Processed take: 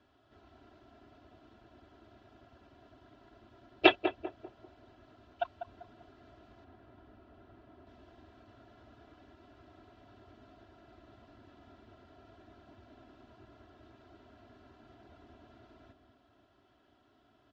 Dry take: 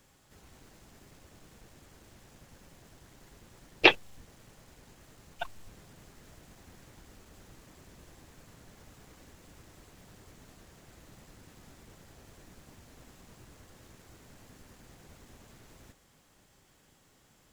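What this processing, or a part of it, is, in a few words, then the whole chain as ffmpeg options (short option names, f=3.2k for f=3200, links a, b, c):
guitar cabinet: -filter_complex "[0:a]equalizer=f=1.6k:w=0.59:g=-6,aecho=1:1:3:0.88,asettb=1/sr,asplit=3[a][b][c];[a]atrim=end=6.644[d];[b]atrim=start=6.64:end=7.87,asetpts=PTS-STARTPTS,afade=t=in:d=0.004:c=qsin,afade=t=out:st=1.226:d=0.004:c=qsin,aemphasis=mode=reproduction:type=75kf[e];[c]atrim=start=7.866[f];[d][e]acrossfade=d=0.004:c1=hsin:c2=qsin[g];[g][f]acrossfade=d=0.004:c1=qsin:c2=hsin,highpass=87,equalizer=f=710:t=q:w=4:g=7,equalizer=f=1.4k:t=q:w=4:g=8,equalizer=f=2.2k:t=q:w=4:g=-5,lowpass=f=3.6k:w=0.5412,lowpass=f=3.6k:w=1.3066,asplit=2[h][i];[i]adelay=196,lowpass=f=1.1k:p=1,volume=-8dB,asplit=2[j][k];[k]adelay=196,lowpass=f=1.1k:p=1,volume=0.41,asplit=2[l][m];[m]adelay=196,lowpass=f=1.1k:p=1,volume=0.41,asplit=2[n][o];[o]adelay=196,lowpass=f=1.1k:p=1,volume=0.41,asplit=2[p][q];[q]adelay=196,lowpass=f=1.1k:p=1,volume=0.41[r];[h][j][l][n][p][r]amix=inputs=6:normalize=0,volume=-3dB"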